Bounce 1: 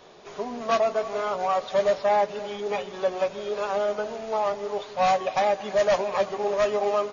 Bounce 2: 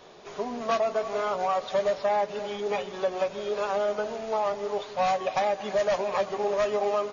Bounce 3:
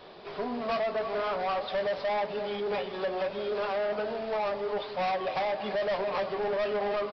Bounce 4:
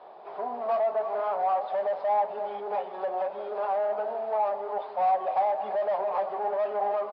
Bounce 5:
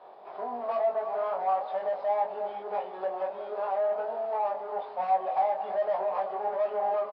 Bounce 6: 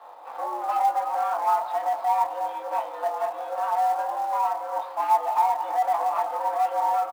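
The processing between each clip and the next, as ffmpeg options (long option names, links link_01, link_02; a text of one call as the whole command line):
ffmpeg -i in.wav -af "acompressor=threshold=-22dB:ratio=4" out.wav
ffmpeg -i in.wav -af "flanger=delay=8.8:depth=4.7:regen=-73:speed=1.2:shape=triangular,aresample=11025,asoftclip=type=tanh:threshold=-32dB,aresample=44100,volume=6dB" out.wav
ffmpeg -i in.wav -af "bandpass=frequency=780:width_type=q:width=3.1:csg=0,volume=7.5dB" out.wav
ffmpeg -i in.wav -filter_complex "[0:a]asplit=2[link_01][link_02];[link_02]adelay=21,volume=-3dB[link_03];[link_01][link_03]amix=inputs=2:normalize=0,volume=-3.5dB" out.wav
ffmpeg -i in.wav -filter_complex "[0:a]asplit=2[link_01][link_02];[link_02]acrusher=bits=4:mode=log:mix=0:aa=0.000001,volume=-3dB[link_03];[link_01][link_03]amix=inputs=2:normalize=0,afreqshift=120" out.wav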